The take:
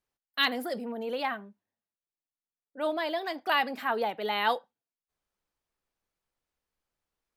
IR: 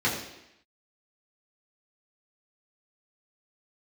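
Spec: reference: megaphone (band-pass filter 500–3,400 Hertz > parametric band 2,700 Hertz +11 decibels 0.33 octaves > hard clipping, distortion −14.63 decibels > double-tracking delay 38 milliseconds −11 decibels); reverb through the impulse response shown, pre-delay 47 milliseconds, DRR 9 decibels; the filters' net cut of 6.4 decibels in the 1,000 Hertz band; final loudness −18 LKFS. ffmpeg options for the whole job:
-filter_complex "[0:a]equalizer=frequency=1000:width_type=o:gain=-8,asplit=2[link_01][link_02];[1:a]atrim=start_sample=2205,adelay=47[link_03];[link_02][link_03]afir=irnorm=-1:irlink=0,volume=-21.5dB[link_04];[link_01][link_04]amix=inputs=2:normalize=0,highpass=500,lowpass=3400,equalizer=frequency=2700:width_type=o:width=0.33:gain=11,asoftclip=type=hard:threshold=-20.5dB,asplit=2[link_05][link_06];[link_06]adelay=38,volume=-11dB[link_07];[link_05][link_07]amix=inputs=2:normalize=0,volume=13.5dB"

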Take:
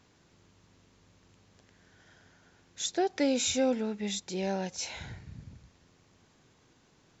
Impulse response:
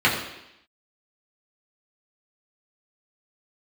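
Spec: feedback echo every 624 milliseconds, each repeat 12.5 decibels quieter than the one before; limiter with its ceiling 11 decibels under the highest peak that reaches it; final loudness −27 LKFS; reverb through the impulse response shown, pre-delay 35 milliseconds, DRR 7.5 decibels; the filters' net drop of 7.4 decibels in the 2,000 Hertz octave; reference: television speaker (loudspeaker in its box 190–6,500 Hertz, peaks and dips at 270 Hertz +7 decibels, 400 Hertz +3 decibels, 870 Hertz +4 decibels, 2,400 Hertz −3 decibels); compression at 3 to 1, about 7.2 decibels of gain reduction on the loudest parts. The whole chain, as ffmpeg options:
-filter_complex "[0:a]equalizer=frequency=2000:width_type=o:gain=-8,acompressor=threshold=-33dB:ratio=3,alimiter=level_in=10dB:limit=-24dB:level=0:latency=1,volume=-10dB,aecho=1:1:624|1248|1872:0.237|0.0569|0.0137,asplit=2[link_01][link_02];[1:a]atrim=start_sample=2205,adelay=35[link_03];[link_02][link_03]afir=irnorm=-1:irlink=0,volume=-27dB[link_04];[link_01][link_04]amix=inputs=2:normalize=0,highpass=frequency=190:width=0.5412,highpass=frequency=190:width=1.3066,equalizer=frequency=270:width_type=q:width=4:gain=7,equalizer=frequency=400:width_type=q:width=4:gain=3,equalizer=frequency=870:width_type=q:width=4:gain=4,equalizer=frequency=2400:width_type=q:width=4:gain=-3,lowpass=frequency=6500:width=0.5412,lowpass=frequency=6500:width=1.3066,volume=13.5dB"

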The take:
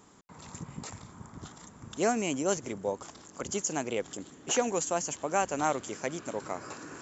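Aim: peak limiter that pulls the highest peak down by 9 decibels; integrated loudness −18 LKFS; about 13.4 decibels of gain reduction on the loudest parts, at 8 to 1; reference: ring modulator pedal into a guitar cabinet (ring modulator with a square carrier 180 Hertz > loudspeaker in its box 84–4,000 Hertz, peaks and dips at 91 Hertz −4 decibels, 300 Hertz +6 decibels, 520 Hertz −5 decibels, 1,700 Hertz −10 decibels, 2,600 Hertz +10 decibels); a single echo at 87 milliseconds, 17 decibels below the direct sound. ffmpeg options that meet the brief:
ffmpeg -i in.wav -af "acompressor=threshold=-36dB:ratio=8,alimiter=level_in=6dB:limit=-24dB:level=0:latency=1,volume=-6dB,aecho=1:1:87:0.141,aeval=exprs='val(0)*sgn(sin(2*PI*180*n/s))':channel_layout=same,highpass=84,equalizer=frequency=91:width_type=q:width=4:gain=-4,equalizer=frequency=300:width_type=q:width=4:gain=6,equalizer=frequency=520:width_type=q:width=4:gain=-5,equalizer=frequency=1700:width_type=q:width=4:gain=-10,equalizer=frequency=2600:width_type=q:width=4:gain=10,lowpass=frequency=4000:width=0.5412,lowpass=frequency=4000:width=1.3066,volume=26dB" out.wav

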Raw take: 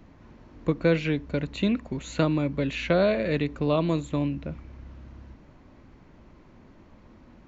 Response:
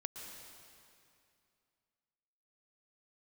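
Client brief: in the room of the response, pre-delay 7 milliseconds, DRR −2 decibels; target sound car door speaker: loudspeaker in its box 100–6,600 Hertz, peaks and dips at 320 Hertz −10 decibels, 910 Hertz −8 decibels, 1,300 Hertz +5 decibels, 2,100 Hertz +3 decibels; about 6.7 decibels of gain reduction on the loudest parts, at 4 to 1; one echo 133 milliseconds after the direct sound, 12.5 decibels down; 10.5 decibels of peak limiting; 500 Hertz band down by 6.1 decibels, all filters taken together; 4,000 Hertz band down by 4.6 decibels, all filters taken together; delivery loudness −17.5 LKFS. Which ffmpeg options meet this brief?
-filter_complex "[0:a]equalizer=frequency=500:width_type=o:gain=-5.5,equalizer=frequency=4000:width_type=o:gain=-6,acompressor=threshold=-28dB:ratio=4,alimiter=level_in=2.5dB:limit=-24dB:level=0:latency=1,volume=-2.5dB,aecho=1:1:133:0.237,asplit=2[link_01][link_02];[1:a]atrim=start_sample=2205,adelay=7[link_03];[link_02][link_03]afir=irnorm=-1:irlink=0,volume=3.5dB[link_04];[link_01][link_04]amix=inputs=2:normalize=0,highpass=100,equalizer=frequency=320:width_type=q:width=4:gain=-10,equalizer=frequency=910:width_type=q:width=4:gain=-8,equalizer=frequency=1300:width_type=q:width=4:gain=5,equalizer=frequency=2100:width_type=q:width=4:gain=3,lowpass=frequency=6600:width=0.5412,lowpass=frequency=6600:width=1.3066,volume=16.5dB"

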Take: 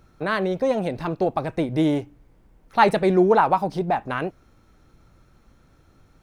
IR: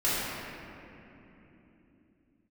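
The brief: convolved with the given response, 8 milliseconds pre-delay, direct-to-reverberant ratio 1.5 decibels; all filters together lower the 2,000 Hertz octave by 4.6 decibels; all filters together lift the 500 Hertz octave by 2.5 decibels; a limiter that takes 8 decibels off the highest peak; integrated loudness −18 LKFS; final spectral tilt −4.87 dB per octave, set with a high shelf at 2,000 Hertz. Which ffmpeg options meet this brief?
-filter_complex "[0:a]equalizer=frequency=500:width_type=o:gain=3.5,highshelf=frequency=2000:gain=4,equalizer=frequency=2000:width_type=o:gain=-9,alimiter=limit=-12dB:level=0:latency=1,asplit=2[link_01][link_02];[1:a]atrim=start_sample=2205,adelay=8[link_03];[link_02][link_03]afir=irnorm=-1:irlink=0,volume=-14.5dB[link_04];[link_01][link_04]amix=inputs=2:normalize=0,volume=2.5dB"

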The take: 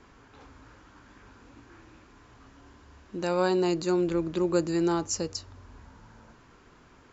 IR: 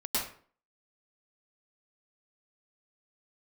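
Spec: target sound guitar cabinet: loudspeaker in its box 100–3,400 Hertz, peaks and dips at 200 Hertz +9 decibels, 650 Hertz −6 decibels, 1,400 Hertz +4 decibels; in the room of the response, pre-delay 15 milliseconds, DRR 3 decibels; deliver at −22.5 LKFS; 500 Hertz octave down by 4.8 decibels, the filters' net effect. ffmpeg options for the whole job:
-filter_complex "[0:a]equalizer=frequency=500:width_type=o:gain=-7.5,asplit=2[link_01][link_02];[1:a]atrim=start_sample=2205,adelay=15[link_03];[link_02][link_03]afir=irnorm=-1:irlink=0,volume=-10dB[link_04];[link_01][link_04]amix=inputs=2:normalize=0,highpass=100,equalizer=frequency=200:width_type=q:width=4:gain=9,equalizer=frequency=650:width_type=q:width=4:gain=-6,equalizer=frequency=1400:width_type=q:width=4:gain=4,lowpass=frequency=3400:width=0.5412,lowpass=frequency=3400:width=1.3066,volume=7dB"

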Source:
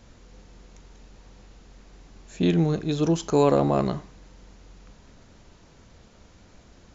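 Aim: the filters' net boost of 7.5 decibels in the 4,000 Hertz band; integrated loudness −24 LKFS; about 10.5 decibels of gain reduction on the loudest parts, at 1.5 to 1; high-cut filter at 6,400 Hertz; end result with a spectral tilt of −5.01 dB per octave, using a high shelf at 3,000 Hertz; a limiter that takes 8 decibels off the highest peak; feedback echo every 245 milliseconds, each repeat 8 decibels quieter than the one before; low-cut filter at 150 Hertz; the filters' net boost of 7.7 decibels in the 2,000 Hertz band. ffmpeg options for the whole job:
ffmpeg -i in.wav -af "highpass=150,lowpass=6400,equalizer=frequency=2000:width_type=o:gain=7,highshelf=frequency=3000:gain=4.5,equalizer=frequency=4000:width_type=o:gain=4,acompressor=threshold=-44dB:ratio=1.5,alimiter=level_in=0.5dB:limit=-24dB:level=0:latency=1,volume=-0.5dB,aecho=1:1:245|490|735|980|1225:0.398|0.159|0.0637|0.0255|0.0102,volume=13dB" out.wav

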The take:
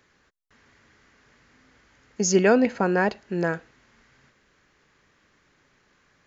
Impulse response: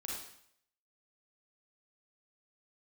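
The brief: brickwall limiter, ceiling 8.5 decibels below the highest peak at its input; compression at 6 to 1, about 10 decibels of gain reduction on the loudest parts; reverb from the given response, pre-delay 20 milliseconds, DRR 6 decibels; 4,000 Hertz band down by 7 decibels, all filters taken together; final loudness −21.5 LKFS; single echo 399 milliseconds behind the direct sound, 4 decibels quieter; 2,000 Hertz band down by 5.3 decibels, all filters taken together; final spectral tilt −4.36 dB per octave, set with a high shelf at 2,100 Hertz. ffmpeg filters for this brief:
-filter_complex "[0:a]equalizer=frequency=2000:width_type=o:gain=-4.5,highshelf=frequency=2100:gain=-4,equalizer=frequency=4000:width_type=o:gain=-4.5,acompressor=threshold=-25dB:ratio=6,alimiter=level_in=0.5dB:limit=-24dB:level=0:latency=1,volume=-0.5dB,aecho=1:1:399:0.631,asplit=2[link_01][link_02];[1:a]atrim=start_sample=2205,adelay=20[link_03];[link_02][link_03]afir=irnorm=-1:irlink=0,volume=-6dB[link_04];[link_01][link_04]amix=inputs=2:normalize=0,volume=11dB"

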